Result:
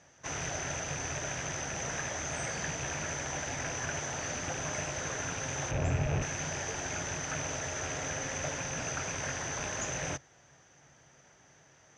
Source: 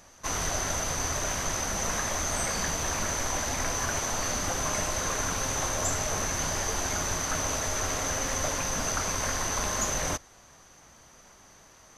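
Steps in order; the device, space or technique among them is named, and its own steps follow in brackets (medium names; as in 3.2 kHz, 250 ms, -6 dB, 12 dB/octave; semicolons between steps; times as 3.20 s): 5.71–6.22 s: tilt EQ -3.5 dB/octave; car door speaker with a rattle (rattle on loud lows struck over -34 dBFS, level -26 dBFS; cabinet simulation 84–6600 Hz, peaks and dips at 140 Hz +9 dB, 210 Hz -6 dB, 1.1 kHz -8 dB, 1.7 kHz +3 dB, 4.3 kHz -9 dB); trim -4.5 dB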